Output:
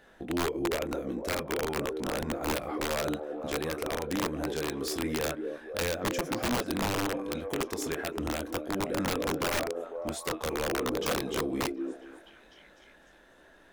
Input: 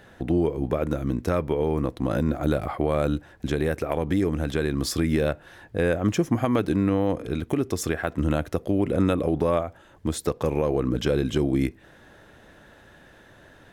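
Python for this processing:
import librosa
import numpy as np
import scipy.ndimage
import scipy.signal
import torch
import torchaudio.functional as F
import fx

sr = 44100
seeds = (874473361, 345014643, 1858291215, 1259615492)

p1 = x + fx.echo_stepped(x, sr, ms=249, hz=370.0, octaves=0.7, feedback_pct=70, wet_db=-3.5, dry=0)
p2 = fx.chorus_voices(p1, sr, voices=4, hz=0.58, base_ms=23, depth_ms=3.8, mix_pct=35)
p3 = fx.peak_eq(p2, sr, hz=110.0, db=-14.0, octaves=1.1)
p4 = (np.mod(10.0 ** (19.5 / 20.0) * p3 + 1.0, 2.0) - 1.0) / 10.0 ** (19.5 / 20.0)
y = p4 * 10.0 ** (-3.5 / 20.0)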